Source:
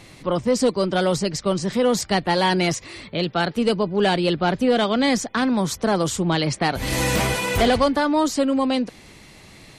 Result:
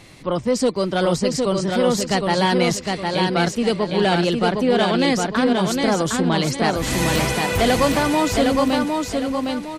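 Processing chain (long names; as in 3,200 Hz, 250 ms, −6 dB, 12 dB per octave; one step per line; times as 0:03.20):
repeating echo 760 ms, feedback 36%, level −3.5 dB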